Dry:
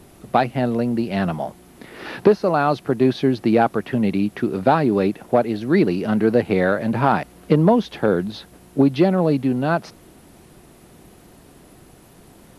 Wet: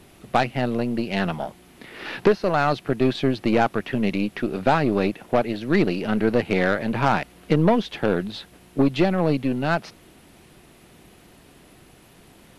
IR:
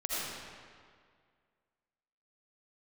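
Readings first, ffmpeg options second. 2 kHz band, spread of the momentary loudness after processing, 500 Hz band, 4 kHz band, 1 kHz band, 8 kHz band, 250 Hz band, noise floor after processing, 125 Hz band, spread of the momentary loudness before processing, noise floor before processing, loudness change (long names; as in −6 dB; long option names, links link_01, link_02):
+1.0 dB, 7 LU, −3.5 dB, +2.0 dB, −2.5 dB, can't be measured, −3.5 dB, −52 dBFS, −3.0 dB, 7 LU, −49 dBFS, −3.0 dB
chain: -af "equalizer=frequency=2700:width=0.84:gain=7,aeval=exprs='0.944*(cos(1*acos(clip(val(0)/0.944,-1,1)))-cos(1*PI/2))+0.0596*(cos(8*acos(clip(val(0)/0.944,-1,1)))-cos(8*PI/2))':channel_layout=same,volume=-4dB"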